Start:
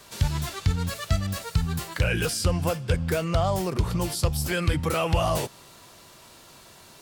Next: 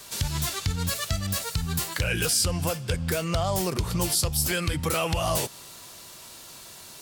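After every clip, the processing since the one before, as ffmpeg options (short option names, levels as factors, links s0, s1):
-af "alimiter=limit=0.141:level=0:latency=1:release=201,highshelf=f=3400:g=9.5"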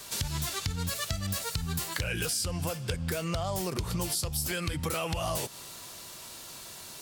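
-af "acompressor=threshold=0.0355:ratio=4"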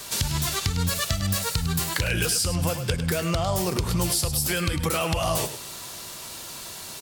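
-af "aecho=1:1:103:0.316,volume=2.11"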